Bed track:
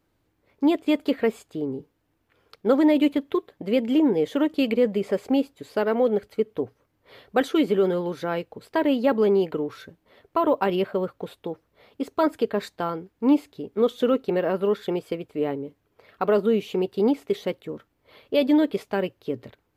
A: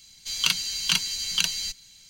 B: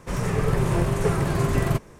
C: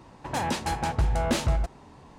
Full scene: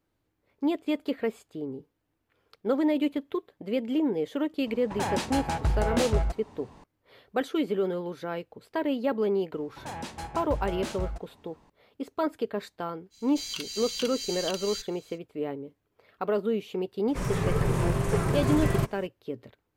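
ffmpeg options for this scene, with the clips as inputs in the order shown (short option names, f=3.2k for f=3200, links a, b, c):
-filter_complex "[3:a]asplit=2[a][b];[0:a]volume=-6.5dB[c];[1:a]alimiter=limit=-15.5dB:level=0:latency=1:release=167[d];[a]atrim=end=2.18,asetpts=PTS-STARTPTS,volume=-1.5dB,afade=t=in:d=0.004:c=hsin,afade=t=out:st=2.176:d=0.004:c=hsin,adelay=4660[e];[b]atrim=end=2.18,asetpts=PTS-STARTPTS,volume=-9.5dB,afade=t=in:d=0.004:c=hsin,afade=t=out:st=2.176:d=0.004:c=hsin,adelay=9520[f];[d]atrim=end=2.09,asetpts=PTS-STARTPTS,volume=-5.5dB,afade=t=in:d=0.05,afade=t=out:st=2.04:d=0.05,adelay=13100[g];[2:a]atrim=end=1.99,asetpts=PTS-STARTPTS,volume=-3.5dB,afade=t=in:d=0.004:c=hsin,afade=t=out:st=1.986:d=0.004:c=hsin,adelay=17080[h];[c][e][f][g][h]amix=inputs=5:normalize=0"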